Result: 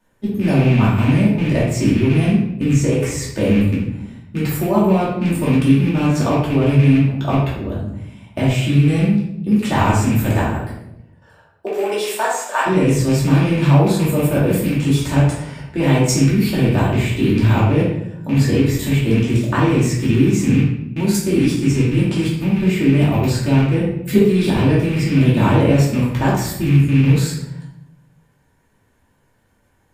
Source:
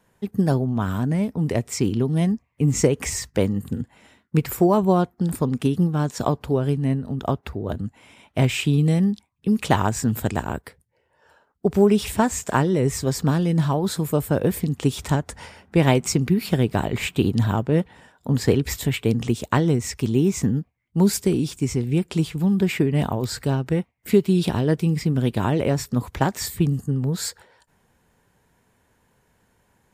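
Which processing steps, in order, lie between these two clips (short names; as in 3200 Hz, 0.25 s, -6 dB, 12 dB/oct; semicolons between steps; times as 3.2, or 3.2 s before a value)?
rattling part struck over -21 dBFS, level -23 dBFS; 10.52–12.65 HPF 200 Hz -> 670 Hz 24 dB/oct; level quantiser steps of 12 dB; shoebox room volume 220 m³, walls mixed, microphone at 2.6 m; gain +1 dB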